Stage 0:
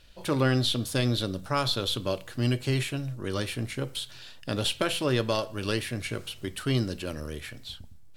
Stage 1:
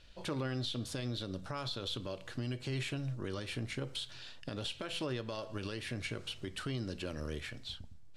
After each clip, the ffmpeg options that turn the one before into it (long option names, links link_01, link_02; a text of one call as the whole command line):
ffmpeg -i in.wav -af "lowpass=7200,acompressor=threshold=-28dB:ratio=2.5,alimiter=level_in=1dB:limit=-24dB:level=0:latency=1:release=149,volume=-1dB,volume=-3dB" out.wav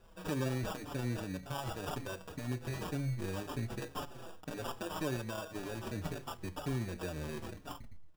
ffmpeg -i in.wav -filter_complex "[0:a]acrusher=samples=21:mix=1:aa=0.000001,asplit=2[link_01][link_02];[link_02]adelay=5.5,afreqshift=-1.9[link_03];[link_01][link_03]amix=inputs=2:normalize=1,volume=3dB" out.wav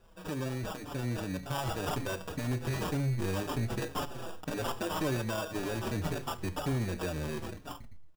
ffmpeg -i in.wav -af "dynaudnorm=framelen=270:gausssize=9:maxgain=8dB,asoftclip=type=tanh:threshold=-25.5dB,aecho=1:1:73:0.0631" out.wav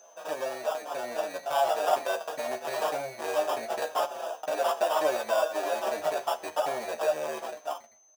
ffmpeg -i in.wav -filter_complex "[0:a]aeval=exprs='val(0)+0.002*sin(2*PI*6200*n/s)':channel_layout=same,highpass=frequency=650:width_type=q:width=5.1,asplit=2[link_01][link_02];[link_02]adelay=13,volume=-5dB[link_03];[link_01][link_03]amix=inputs=2:normalize=0,volume=1.5dB" out.wav